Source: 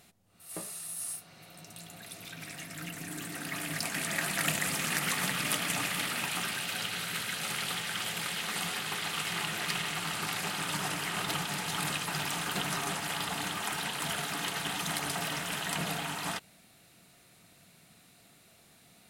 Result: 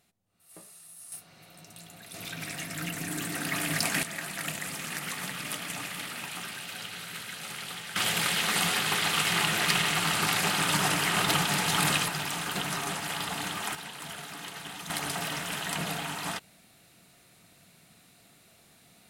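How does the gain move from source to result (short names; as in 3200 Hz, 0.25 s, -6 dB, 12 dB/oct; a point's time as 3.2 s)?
-10 dB
from 1.12 s -1 dB
from 2.14 s +6 dB
from 4.03 s -4.5 dB
from 7.96 s +7.5 dB
from 12.08 s +1 dB
from 13.75 s -6.5 dB
from 14.9 s +1 dB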